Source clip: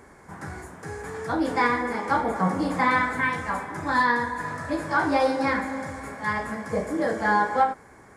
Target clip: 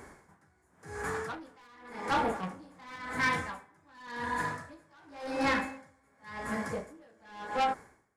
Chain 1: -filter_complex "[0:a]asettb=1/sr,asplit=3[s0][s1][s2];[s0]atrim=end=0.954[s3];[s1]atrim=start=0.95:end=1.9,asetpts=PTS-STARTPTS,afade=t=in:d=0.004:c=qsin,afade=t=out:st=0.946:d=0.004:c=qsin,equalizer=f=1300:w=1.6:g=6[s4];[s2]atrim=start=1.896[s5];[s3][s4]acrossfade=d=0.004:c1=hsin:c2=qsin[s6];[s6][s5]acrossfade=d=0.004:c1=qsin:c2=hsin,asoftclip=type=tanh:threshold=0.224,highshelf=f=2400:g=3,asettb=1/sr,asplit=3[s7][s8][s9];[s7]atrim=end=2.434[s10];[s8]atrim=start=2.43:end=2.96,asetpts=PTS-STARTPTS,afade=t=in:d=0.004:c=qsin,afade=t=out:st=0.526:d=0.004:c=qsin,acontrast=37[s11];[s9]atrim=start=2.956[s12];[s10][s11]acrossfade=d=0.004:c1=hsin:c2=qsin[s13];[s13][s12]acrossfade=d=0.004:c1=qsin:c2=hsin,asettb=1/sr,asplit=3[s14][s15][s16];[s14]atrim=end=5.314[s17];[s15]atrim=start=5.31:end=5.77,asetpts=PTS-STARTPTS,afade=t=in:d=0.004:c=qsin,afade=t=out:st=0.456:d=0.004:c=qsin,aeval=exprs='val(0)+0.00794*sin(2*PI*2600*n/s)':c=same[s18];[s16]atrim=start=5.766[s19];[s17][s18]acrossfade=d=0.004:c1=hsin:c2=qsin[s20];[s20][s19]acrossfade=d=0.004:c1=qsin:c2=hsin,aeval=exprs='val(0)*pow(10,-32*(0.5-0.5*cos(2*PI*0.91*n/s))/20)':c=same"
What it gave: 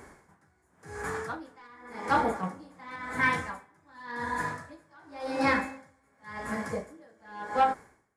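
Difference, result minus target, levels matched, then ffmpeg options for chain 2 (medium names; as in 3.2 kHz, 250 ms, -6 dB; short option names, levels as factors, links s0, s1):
saturation: distortion -11 dB
-filter_complex "[0:a]asettb=1/sr,asplit=3[s0][s1][s2];[s0]atrim=end=0.954[s3];[s1]atrim=start=0.95:end=1.9,asetpts=PTS-STARTPTS,afade=t=in:d=0.004:c=qsin,afade=t=out:st=0.946:d=0.004:c=qsin,equalizer=f=1300:w=1.6:g=6[s4];[s2]atrim=start=1.896[s5];[s3][s4]acrossfade=d=0.004:c1=hsin:c2=qsin[s6];[s6][s5]acrossfade=d=0.004:c1=qsin:c2=hsin,asoftclip=type=tanh:threshold=0.0708,highshelf=f=2400:g=3,asettb=1/sr,asplit=3[s7][s8][s9];[s7]atrim=end=2.434[s10];[s8]atrim=start=2.43:end=2.96,asetpts=PTS-STARTPTS,afade=t=in:d=0.004:c=qsin,afade=t=out:st=0.526:d=0.004:c=qsin,acontrast=37[s11];[s9]atrim=start=2.956[s12];[s10][s11]acrossfade=d=0.004:c1=hsin:c2=qsin[s13];[s13][s12]acrossfade=d=0.004:c1=qsin:c2=hsin,asettb=1/sr,asplit=3[s14][s15][s16];[s14]atrim=end=5.314[s17];[s15]atrim=start=5.31:end=5.77,asetpts=PTS-STARTPTS,afade=t=in:d=0.004:c=qsin,afade=t=out:st=0.456:d=0.004:c=qsin,aeval=exprs='val(0)+0.00794*sin(2*PI*2600*n/s)':c=same[s18];[s16]atrim=start=5.766[s19];[s17][s18]acrossfade=d=0.004:c1=hsin:c2=qsin[s20];[s20][s19]acrossfade=d=0.004:c1=qsin:c2=hsin,aeval=exprs='val(0)*pow(10,-32*(0.5-0.5*cos(2*PI*0.91*n/s))/20)':c=same"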